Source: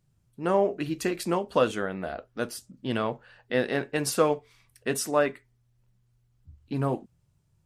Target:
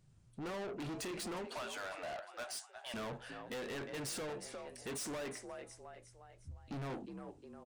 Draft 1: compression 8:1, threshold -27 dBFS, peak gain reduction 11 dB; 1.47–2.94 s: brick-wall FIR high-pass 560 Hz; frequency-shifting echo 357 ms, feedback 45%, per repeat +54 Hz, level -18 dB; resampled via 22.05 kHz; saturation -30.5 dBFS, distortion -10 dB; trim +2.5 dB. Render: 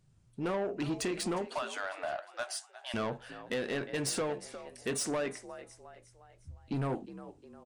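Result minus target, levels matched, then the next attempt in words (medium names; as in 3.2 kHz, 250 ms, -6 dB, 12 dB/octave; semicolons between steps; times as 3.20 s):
saturation: distortion -7 dB
compression 8:1, threshold -27 dBFS, peak gain reduction 11 dB; 1.47–2.94 s: brick-wall FIR high-pass 560 Hz; frequency-shifting echo 357 ms, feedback 45%, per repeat +54 Hz, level -18 dB; resampled via 22.05 kHz; saturation -42.5 dBFS, distortion -3 dB; trim +2.5 dB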